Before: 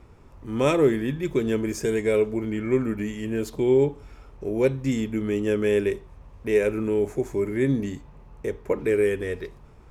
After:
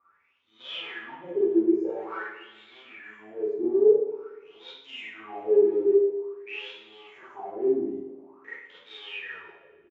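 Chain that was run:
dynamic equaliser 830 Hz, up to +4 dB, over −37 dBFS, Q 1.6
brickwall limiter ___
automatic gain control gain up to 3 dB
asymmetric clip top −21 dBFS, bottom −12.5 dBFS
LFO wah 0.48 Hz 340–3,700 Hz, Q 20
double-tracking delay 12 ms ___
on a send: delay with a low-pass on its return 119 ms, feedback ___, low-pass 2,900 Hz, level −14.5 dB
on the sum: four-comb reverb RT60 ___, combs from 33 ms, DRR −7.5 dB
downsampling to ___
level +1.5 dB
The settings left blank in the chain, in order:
−12 dBFS, −7 dB, 55%, 0.57 s, 16,000 Hz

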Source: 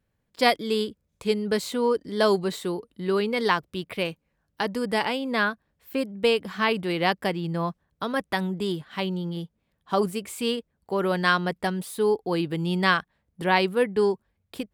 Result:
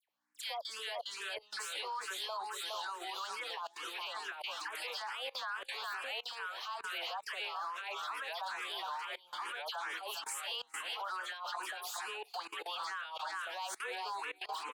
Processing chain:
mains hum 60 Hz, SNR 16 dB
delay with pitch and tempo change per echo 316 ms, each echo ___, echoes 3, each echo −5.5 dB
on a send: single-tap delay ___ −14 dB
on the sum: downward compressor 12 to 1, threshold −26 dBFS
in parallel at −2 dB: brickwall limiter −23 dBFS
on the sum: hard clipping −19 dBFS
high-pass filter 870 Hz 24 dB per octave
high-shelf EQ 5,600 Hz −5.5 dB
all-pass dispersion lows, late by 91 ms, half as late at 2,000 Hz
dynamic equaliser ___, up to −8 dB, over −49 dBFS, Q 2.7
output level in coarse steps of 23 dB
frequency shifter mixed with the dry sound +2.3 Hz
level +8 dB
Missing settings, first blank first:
−2 semitones, 413 ms, 2,000 Hz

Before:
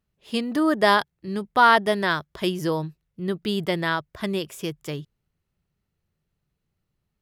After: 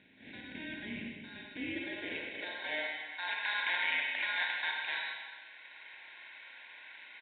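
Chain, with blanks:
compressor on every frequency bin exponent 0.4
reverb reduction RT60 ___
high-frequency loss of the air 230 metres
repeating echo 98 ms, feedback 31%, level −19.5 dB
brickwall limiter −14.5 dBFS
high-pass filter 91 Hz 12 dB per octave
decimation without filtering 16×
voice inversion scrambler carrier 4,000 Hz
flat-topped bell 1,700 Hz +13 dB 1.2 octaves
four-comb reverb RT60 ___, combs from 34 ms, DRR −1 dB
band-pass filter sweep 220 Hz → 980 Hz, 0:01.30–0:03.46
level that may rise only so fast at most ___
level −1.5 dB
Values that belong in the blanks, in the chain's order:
1.5 s, 1.6 s, 480 dB per second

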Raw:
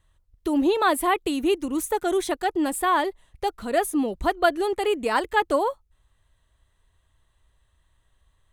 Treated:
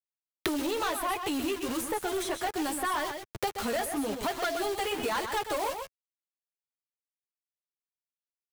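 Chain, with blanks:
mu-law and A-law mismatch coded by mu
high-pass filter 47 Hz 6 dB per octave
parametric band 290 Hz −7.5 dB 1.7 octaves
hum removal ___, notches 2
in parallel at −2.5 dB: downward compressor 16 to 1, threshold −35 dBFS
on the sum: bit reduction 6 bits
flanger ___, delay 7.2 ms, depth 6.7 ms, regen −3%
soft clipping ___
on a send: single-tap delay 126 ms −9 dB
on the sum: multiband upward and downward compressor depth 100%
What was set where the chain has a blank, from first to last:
337.9 Hz, 0.93 Hz, −26.5 dBFS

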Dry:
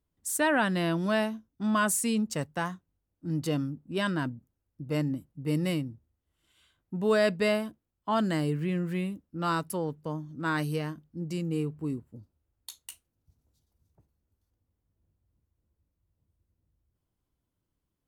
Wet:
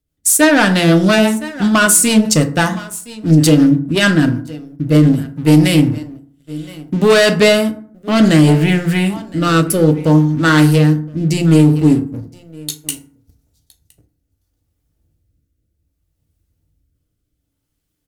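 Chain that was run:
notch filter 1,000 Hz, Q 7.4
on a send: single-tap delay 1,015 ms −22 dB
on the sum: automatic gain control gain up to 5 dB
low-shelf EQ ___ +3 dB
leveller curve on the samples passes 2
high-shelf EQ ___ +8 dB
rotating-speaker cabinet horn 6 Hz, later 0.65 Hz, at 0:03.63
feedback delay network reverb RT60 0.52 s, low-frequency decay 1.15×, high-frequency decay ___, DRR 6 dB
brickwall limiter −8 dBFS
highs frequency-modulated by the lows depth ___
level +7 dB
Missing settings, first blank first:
110 Hz, 2,600 Hz, 0.5×, 0.14 ms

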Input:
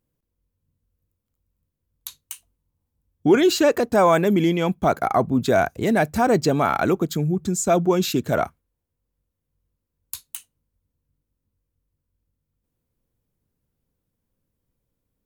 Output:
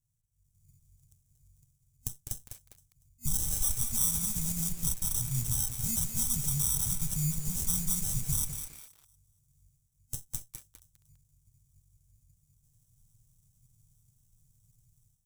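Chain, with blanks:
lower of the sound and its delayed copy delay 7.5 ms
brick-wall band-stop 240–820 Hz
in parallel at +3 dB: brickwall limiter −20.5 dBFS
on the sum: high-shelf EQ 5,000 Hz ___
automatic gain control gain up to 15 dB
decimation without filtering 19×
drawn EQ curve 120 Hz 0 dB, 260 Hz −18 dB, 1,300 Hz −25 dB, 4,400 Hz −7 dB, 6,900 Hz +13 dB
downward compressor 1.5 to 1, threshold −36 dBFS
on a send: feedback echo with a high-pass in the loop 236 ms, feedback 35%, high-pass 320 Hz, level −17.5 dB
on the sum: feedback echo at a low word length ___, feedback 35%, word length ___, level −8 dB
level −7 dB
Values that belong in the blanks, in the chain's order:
−3.5 dB, 202 ms, 6 bits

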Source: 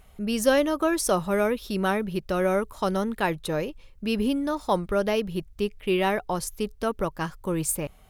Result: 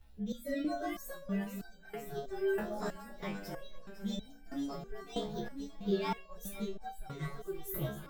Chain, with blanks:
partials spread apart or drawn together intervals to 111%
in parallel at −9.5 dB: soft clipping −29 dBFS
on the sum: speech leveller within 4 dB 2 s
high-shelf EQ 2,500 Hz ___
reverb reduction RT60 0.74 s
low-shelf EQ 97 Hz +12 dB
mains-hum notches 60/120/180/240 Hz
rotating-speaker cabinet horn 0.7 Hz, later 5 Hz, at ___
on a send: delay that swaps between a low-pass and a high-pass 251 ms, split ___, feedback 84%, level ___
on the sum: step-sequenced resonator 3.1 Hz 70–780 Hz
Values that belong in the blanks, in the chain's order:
+3 dB, 0:05.71, 960 Hz, −9 dB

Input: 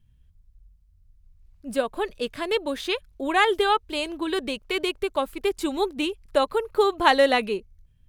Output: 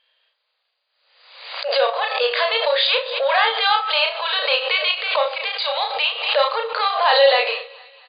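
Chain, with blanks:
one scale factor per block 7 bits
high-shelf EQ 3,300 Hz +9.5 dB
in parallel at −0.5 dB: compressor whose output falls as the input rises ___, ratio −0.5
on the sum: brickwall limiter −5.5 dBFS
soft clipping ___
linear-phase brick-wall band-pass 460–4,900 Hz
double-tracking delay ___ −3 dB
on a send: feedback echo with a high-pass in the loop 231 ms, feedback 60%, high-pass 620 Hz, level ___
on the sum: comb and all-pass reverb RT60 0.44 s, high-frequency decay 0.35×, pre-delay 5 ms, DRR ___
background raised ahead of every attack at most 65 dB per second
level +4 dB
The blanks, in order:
−27 dBFS, −15.5 dBFS, 33 ms, −22 dB, 10 dB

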